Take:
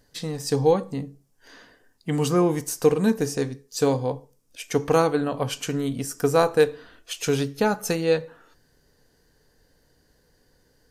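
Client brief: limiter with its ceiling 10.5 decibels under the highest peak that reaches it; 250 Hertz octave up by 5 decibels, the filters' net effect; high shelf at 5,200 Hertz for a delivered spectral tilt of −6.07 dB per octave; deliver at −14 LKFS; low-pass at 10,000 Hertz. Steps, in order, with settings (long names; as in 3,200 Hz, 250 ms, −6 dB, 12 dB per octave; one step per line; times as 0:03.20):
low-pass filter 10,000 Hz
parametric band 250 Hz +6.5 dB
high-shelf EQ 5,200 Hz −3.5 dB
level +11.5 dB
brickwall limiter −2.5 dBFS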